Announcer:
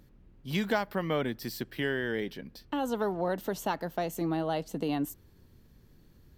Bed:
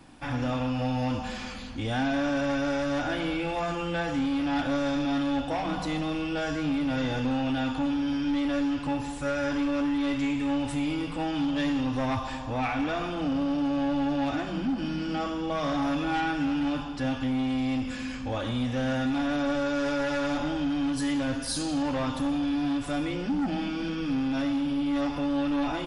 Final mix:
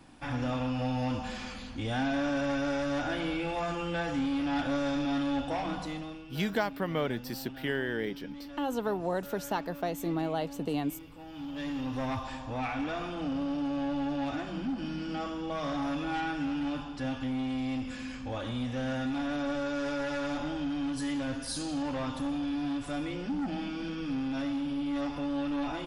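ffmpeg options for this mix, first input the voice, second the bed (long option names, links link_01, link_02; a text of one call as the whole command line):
ffmpeg -i stem1.wav -i stem2.wav -filter_complex "[0:a]adelay=5850,volume=-1dB[link_01];[1:a]volume=9.5dB,afade=type=out:start_time=5.61:duration=0.63:silence=0.188365,afade=type=in:start_time=11.26:duration=0.73:silence=0.237137[link_02];[link_01][link_02]amix=inputs=2:normalize=0" out.wav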